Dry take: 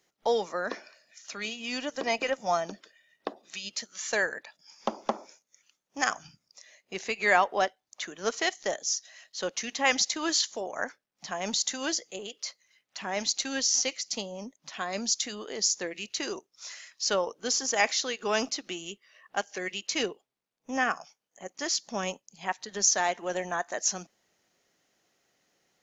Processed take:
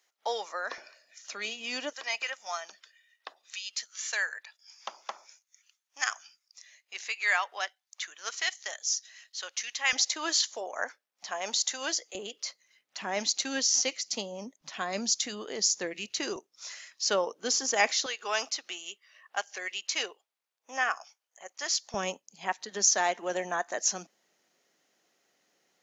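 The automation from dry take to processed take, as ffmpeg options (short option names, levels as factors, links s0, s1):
-af "asetnsamples=n=441:p=0,asendcmd='0.78 highpass f 360;1.93 highpass f 1400;9.93 highpass f 500;12.15 highpass f 170;14.61 highpass f 58;16.36 highpass f 190;18.06 highpass f 740;21.94 highpass f 200',highpass=760"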